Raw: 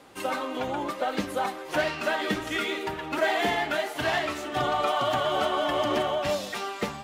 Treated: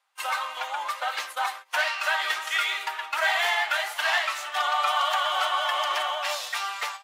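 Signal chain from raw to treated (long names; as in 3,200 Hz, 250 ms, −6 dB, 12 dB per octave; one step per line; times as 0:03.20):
high-pass filter 880 Hz 24 dB per octave
noise gate −40 dBFS, range −23 dB
level +5 dB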